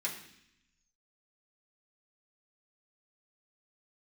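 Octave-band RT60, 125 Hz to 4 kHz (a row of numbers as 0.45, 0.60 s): 1.3, 1.1, 0.70, 0.70, 0.95, 0.95 s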